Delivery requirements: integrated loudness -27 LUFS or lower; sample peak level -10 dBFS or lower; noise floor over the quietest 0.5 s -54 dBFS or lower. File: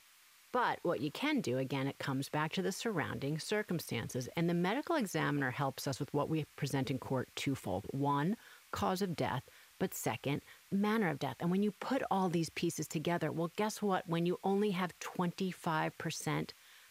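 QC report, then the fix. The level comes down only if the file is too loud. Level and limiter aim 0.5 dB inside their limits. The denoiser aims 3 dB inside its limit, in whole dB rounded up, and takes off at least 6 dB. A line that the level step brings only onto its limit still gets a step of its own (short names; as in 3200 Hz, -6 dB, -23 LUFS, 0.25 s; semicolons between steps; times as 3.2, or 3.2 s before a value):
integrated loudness -36.5 LUFS: OK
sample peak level -20.5 dBFS: OK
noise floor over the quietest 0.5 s -63 dBFS: OK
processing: none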